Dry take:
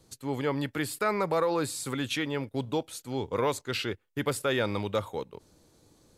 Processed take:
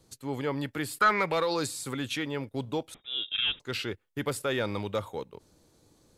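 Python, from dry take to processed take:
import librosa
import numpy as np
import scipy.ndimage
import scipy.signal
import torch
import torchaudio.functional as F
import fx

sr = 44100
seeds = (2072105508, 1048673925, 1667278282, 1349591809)

y = fx.peak_eq(x, sr, hz=fx.line((0.99, 1200.0), (1.66, 6200.0)), db=14.5, octaves=1.0, at=(0.99, 1.66), fade=0.02)
y = 10.0 ** (-14.0 / 20.0) * np.tanh(y / 10.0 ** (-14.0 / 20.0))
y = fx.freq_invert(y, sr, carrier_hz=3700, at=(2.94, 3.6))
y = y * librosa.db_to_amplitude(-1.5)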